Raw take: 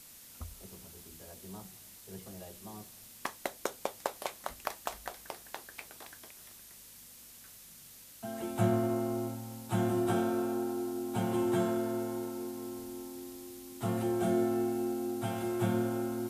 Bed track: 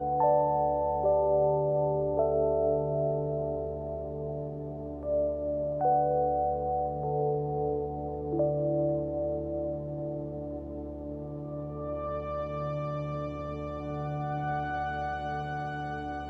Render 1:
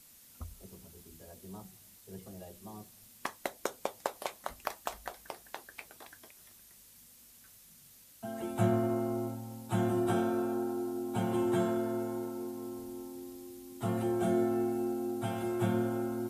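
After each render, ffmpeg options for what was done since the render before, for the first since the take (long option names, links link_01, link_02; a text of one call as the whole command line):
ffmpeg -i in.wav -af "afftdn=noise_reduction=6:noise_floor=-53" out.wav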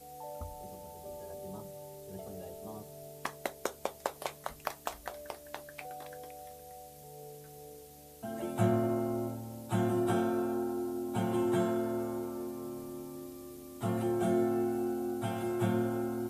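ffmpeg -i in.wav -i bed.wav -filter_complex "[1:a]volume=-20.5dB[link_01];[0:a][link_01]amix=inputs=2:normalize=0" out.wav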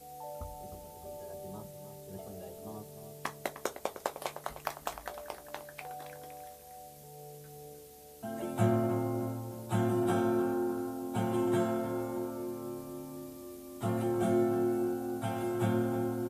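ffmpeg -i in.wav -filter_complex "[0:a]asplit=2[link_01][link_02];[link_02]adelay=19,volume=-13dB[link_03];[link_01][link_03]amix=inputs=2:normalize=0,asplit=2[link_04][link_05];[link_05]adelay=306,lowpass=frequency=2000:poles=1,volume=-10.5dB,asplit=2[link_06][link_07];[link_07]adelay=306,lowpass=frequency=2000:poles=1,volume=0.48,asplit=2[link_08][link_09];[link_09]adelay=306,lowpass=frequency=2000:poles=1,volume=0.48,asplit=2[link_10][link_11];[link_11]adelay=306,lowpass=frequency=2000:poles=1,volume=0.48,asplit=2[link_12][link_13];[link_13]adelay=306,lowpass=frequency=2000:poles=1,volume=0.48[link_14];[link_04][link_06][link_08][link_10][link_12][link_14]amix=inputs=6:normalize=0" out.wav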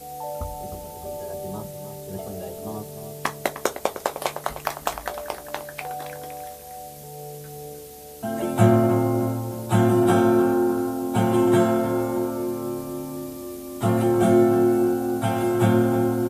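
ffmpeg -i in.wav -af "volume=11.5dB,alimiter=limit=-3dB:level=0:latency=1" out.wav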